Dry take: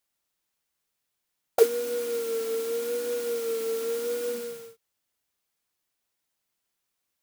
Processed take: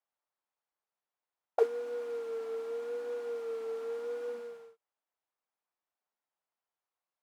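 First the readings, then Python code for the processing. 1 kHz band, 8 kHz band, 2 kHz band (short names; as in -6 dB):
-3.0 dB, under -20 dB, -9.0 dB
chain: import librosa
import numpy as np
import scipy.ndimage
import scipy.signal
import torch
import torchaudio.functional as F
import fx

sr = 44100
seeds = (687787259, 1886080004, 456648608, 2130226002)

y = fx.bandpass_q(x, sr, hz=840.0, q=1.3)
y = y * 10.0 ** (-2.0 / 20.0)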